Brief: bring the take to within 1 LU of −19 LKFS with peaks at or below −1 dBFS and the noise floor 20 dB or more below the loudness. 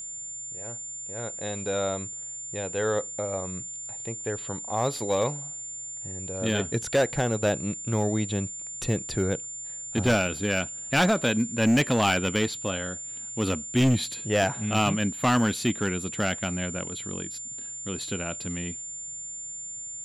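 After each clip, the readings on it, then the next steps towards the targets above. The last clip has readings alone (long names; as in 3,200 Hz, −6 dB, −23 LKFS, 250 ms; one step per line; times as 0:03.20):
share of clipped samples 1.0%; peaks flattened at −16.5 dBFS; interfering tone 7,200 Hz; level of the tone −35 dBFS; integrated loudness −27.5 LKFS; sample peak −16.5 dBFS; target loudness −19.0 LKFS
→ clipped peaks rebuilt −16.5 dBFS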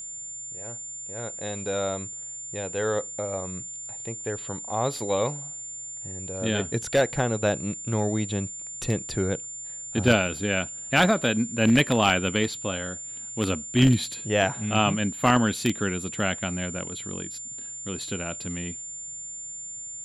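share of clipped samples 0.0%; interfering tone 7,200 Hz; level of the tone −35 dBFS
→ notch filter 7,200 Hz, Q 30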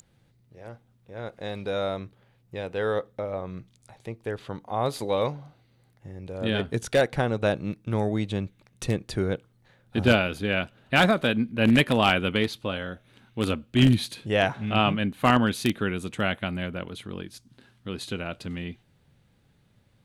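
interfering tone none found; integrated loudness −26.0 LKFS; sample peak −7.0 dBFS; target loudness −19.0 LKFS
→ level +7 dB
brickwall limiter −1 dBFS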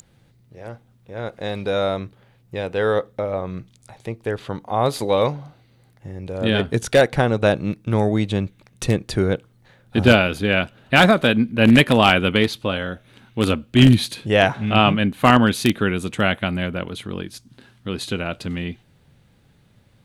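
integrated loudness −19.5 LKFS; sample peak −1.0 dBFS; background noise floor −57 dBFS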